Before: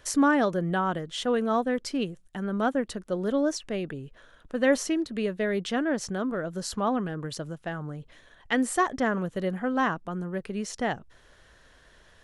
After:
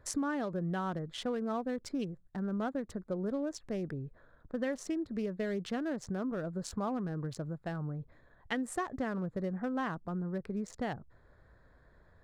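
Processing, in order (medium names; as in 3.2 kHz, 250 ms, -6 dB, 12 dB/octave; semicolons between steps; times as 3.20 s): local Wiener filter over 15 samples; peaking EQ 100 Hz +7 dB 1.7 oct; compression, threshold -26 dBFS, peak gain reduction 10.5 dB; trim -5 dB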